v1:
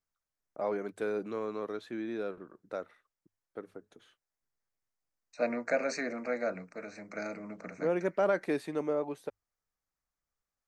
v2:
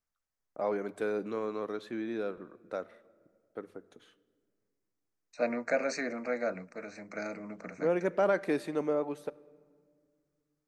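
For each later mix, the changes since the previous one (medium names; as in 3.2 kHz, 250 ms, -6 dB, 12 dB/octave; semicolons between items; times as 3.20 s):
reverb: on, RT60 1.9 s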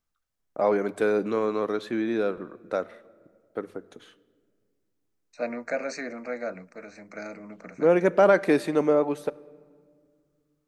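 first voice +9.0 dB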